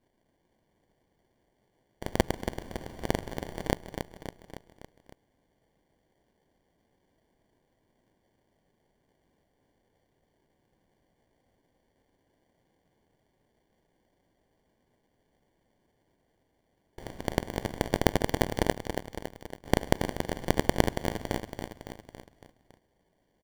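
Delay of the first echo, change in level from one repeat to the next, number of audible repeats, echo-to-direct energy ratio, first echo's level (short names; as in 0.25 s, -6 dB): 0.279 s, -4.5 dB, 5, -6.0 dB, -8.0 dB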